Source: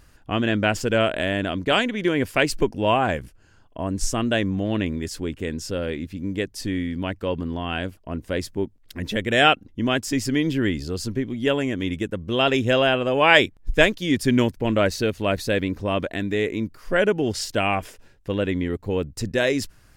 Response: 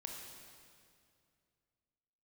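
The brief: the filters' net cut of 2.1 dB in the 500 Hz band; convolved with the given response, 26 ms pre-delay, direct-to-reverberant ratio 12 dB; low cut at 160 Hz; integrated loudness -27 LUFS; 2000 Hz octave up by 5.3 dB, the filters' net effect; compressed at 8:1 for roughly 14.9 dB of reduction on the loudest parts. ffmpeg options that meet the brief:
-filter_complex "[0:a]highpass=160,equalizer=f=500:t=o:g=-3,equalizer=f=2k:t=o:g=7,acompressor=threshold=-21dB:ratio=8,asplit=2[a][b];[1:a]atrim=start_sample=2205,adelay=26[c];[b][c]afir=irnorm=-1:irlink=0,volume=-9.5dB[d];[a][d]amix=inputs=2:normalize=0"

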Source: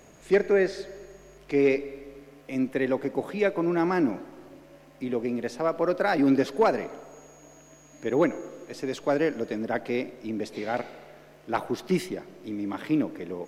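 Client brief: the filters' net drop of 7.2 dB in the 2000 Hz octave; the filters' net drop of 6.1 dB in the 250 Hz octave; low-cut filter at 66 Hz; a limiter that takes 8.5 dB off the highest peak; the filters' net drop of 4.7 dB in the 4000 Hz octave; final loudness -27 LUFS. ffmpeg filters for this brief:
-af "highpass=66,equalizer=f=250:t=o:g=-8,equalizer=f=2k:t=o:g=-8.5,equalizer=f=4k:t=o:g=-3.5,volume=7dB,alimiter=limit=-15dB:level=0:latency=1"

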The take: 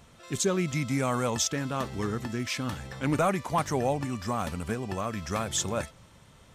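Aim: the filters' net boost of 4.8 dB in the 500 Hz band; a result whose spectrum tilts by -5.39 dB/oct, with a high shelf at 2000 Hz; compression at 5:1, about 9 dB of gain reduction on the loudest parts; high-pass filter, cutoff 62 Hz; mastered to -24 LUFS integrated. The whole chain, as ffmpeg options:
-af "highpass=62,equalizer=f=500:t=o:g=6.5,highshelf=f=2k:g=-7,acompressor=threshold=-28dB:ratio=5,volume=9.5dB"

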